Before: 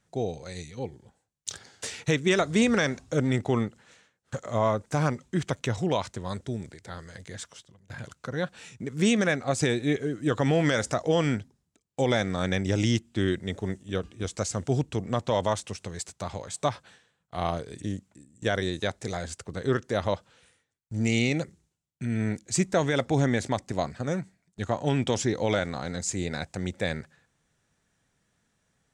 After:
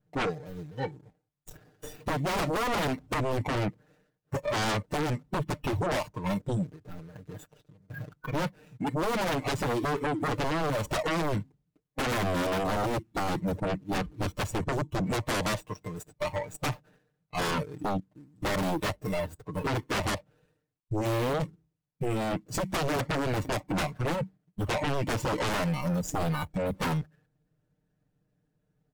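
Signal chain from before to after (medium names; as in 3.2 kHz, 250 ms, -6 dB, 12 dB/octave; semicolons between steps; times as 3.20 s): median filter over 41 samples; spectral noise reduction 15 dB; comb 6.6 ms, depth 97%; compression 16:1, threshold -27 dBFS, peak gain reduction 13 dB; sine folder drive 17 dB, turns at -17.5 dBFS; trim -7.5 dB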